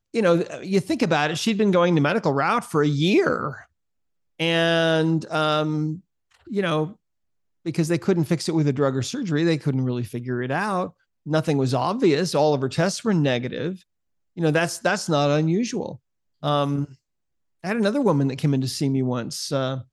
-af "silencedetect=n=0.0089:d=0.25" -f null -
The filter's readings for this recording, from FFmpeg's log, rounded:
silence_start: 3.64
silence_end: 4.39 | silence_duration: 0.76
silence_start: 5.99
silence_end: 6.47 | silence_duration: 0.48
silence_start: 6.93
silence_end: 7.66 | silence_duration: 0.73
silence_start: 10.90
silence_end: 11.26 | silence_duration: 0.36
silence_start: 13.77
silence_end: 14.37 | silence_duration: 0.60
silence_start: 15.96
silence_end: 16.43 | silence_duration: 0.47
silence_start: 16.93
silence_end: 17.64 | silence_duration: 0.71